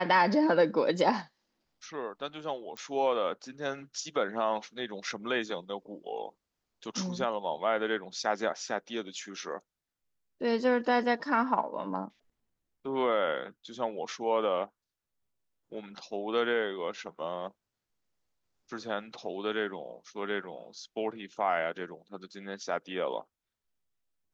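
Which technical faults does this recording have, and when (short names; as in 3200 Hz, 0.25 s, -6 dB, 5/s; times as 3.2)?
2.77 pop -25 dBFS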